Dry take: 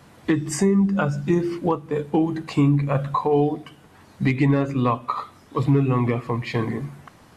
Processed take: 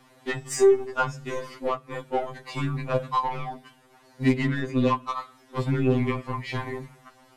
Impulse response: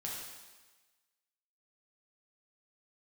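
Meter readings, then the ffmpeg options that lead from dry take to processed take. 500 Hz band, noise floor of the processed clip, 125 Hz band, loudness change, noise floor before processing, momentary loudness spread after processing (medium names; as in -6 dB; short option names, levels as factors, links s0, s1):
-1.0 dB, -57 dBFS, -7.5 dB, -4.5 dB, -51 dBFS, 14 LU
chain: -af "aeval=exprs='0.335*(cos(1*acos(clip(val(0)/0.335,-1,1)))-cos(1*PI/2))+0.00531*(cos(4*acos(clip(val(0)/0.335,-1,1)))-cos(4*PI/2))+0.0168*(cos(7*acos(clip(val(0)/0.335,-1,1)))-cos(7*PI/2))':c=same,equalizer=f=140:t=o:w=1:g=-11.5,afftfilt=real='re*2.45*eq(mod(b,6),0)':imag='im*2.45*eq(mod(b,6),0)':win_size=2048:overlap=0.75,volume=1.26"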